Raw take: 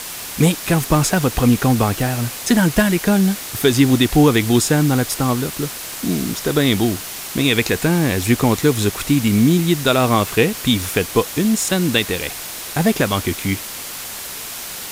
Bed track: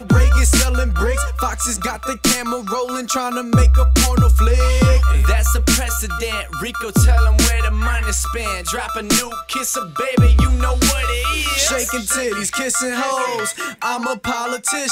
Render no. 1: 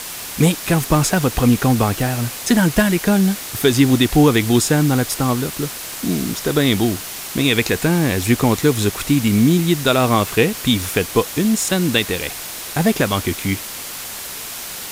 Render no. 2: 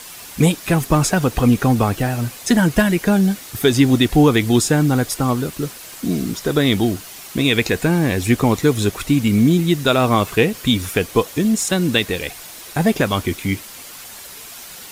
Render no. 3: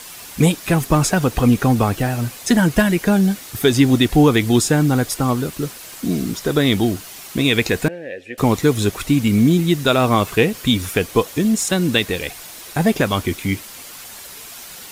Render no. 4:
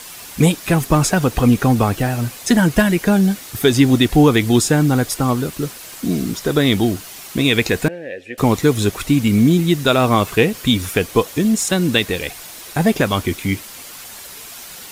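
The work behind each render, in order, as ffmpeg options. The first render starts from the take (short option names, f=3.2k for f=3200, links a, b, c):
-af anull
-af "afftdn=nr=8:nf=-30"
-filter_complex "[0:a]asettb=1/sr,asplit=3[a][b][c];[a]atrim=end=7.884[d];[b]atrim=start=7.88:end=8.38,asetpts=PTS-STARTPTS,afade=t=in:d=0.004:c=qsin,afade=t=out:st=0.496:d=0.004:c=qsin,asplit=3[e][f][g];[e]bandpass=f=530:t=q:w=8,volume=0dB[h];[f]bandpass=f=1.84k:t=q:w=8,volume=-6dB[i];[g]bandpass=f=2.48k:t=q:w=8,volume=-9dB[j];[h][i][j]amix=inputs=3:normalize=0[k];[c]atrim=start=8.376[l];[d][k]acrossfade=d=0.004:c1=hsin:c2=qsin[m];[m][l]acrossfade=d=0.004:c1=qsin:c2=hsin"
-af "volume=1dB"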